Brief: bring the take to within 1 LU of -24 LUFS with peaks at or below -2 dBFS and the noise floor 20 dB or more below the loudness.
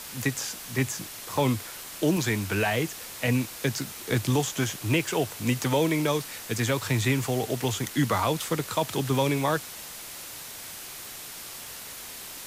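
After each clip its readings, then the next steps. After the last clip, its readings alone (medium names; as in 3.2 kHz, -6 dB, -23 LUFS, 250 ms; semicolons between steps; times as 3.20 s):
noise floor -41 dBFS; noise floor target -48 dBFS; loudness -28.0 LUFS; peak level -13.5 dBFS; loudness target -24.0 LUFS
-> noise reduction 7 dB, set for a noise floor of -41 dBFS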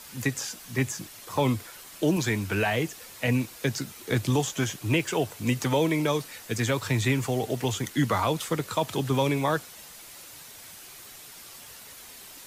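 noise floor -46 dBFS; noise floor target -48 dBFS
-> noise reduction 6 dB, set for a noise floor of -46 dBFS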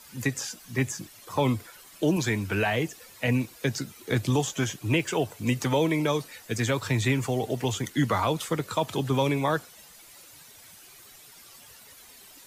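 noise floor -51 dBFS; loudness -27.5 LUFS; peak level -14.0 dBFS; loudness target -24.0 LUFS
-> trim +3.5 dB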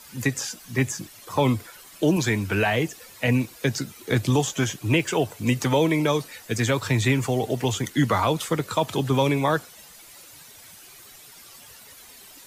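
loudness -24.0 LUFS; peak level -10.5 dBFS; noise floor -47 dBFS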